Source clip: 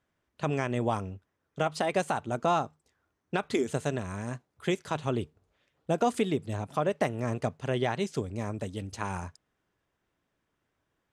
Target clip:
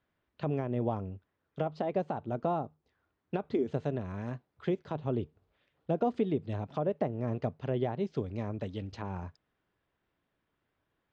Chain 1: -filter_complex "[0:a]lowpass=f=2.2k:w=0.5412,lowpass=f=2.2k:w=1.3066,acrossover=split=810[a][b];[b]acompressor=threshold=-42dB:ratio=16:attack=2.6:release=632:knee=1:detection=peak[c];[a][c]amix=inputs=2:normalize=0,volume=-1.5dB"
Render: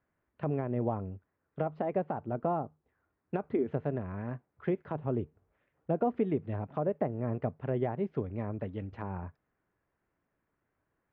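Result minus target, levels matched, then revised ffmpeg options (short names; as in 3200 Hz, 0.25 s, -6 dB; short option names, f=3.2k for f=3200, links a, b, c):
4000 Hz band -11.0 dB
-filter_complex "[0:a]lowpass=f=4.5k:w=0.5412,lowpass=f=4.5k:w=1.3066,acrossover=split=810[a][b];[b]acompressor=threshold=-42dB:ratio=16:attack=2.6:release=632:knee=1:detection=peak[c];[a][c]amix=inputs=2:normalize=0,volume=-1.5dB"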